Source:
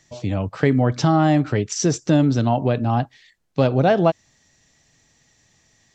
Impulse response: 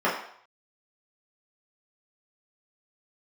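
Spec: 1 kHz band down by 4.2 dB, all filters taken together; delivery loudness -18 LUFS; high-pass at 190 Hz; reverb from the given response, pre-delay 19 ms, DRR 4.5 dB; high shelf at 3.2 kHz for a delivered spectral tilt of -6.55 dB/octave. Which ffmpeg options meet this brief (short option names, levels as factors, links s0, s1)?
-filter_complex "[0:a]highpass=190,equalizer=f=1000:t=o:g=-6,highshelf=f=3200:g=-4.5,asplit=2[s0][s1];[1:a]atrim=start_sample=2205,adelay=19[s2];[s1][s2]afir=irnorm=-1:irlink=0,volume=0.0944[s3];[s0][s3]amix=inputs=2:normalize=0,volume=1.5"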